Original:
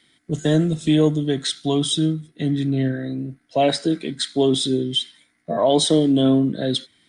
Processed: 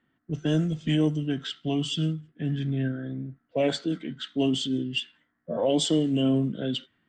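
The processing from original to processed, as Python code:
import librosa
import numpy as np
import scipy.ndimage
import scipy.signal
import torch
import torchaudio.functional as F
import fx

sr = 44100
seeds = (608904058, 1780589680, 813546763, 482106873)

y = fx.env_lowpass(x, sr, base_hz=1400.0, full_db=-12.5)
y = fx.formant_shift(y, sr, semitones=-2)
y = F.gain(torch.from_numpy(y), -6.5).numpy()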